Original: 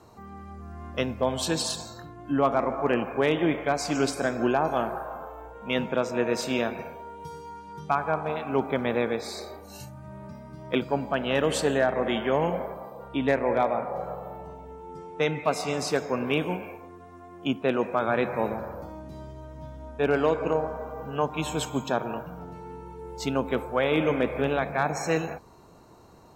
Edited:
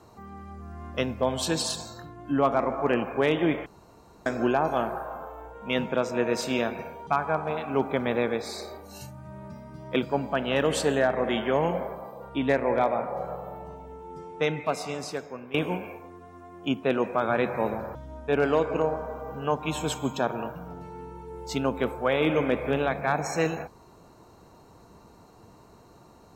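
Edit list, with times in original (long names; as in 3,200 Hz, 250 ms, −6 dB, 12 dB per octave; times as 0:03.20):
0:03.66–0:04.26: fill with room tone
0:07.07–0:07.86: remove
0:15.16–0:16.33: fade out, to −17 dB
0:18.74–0:19.66: remove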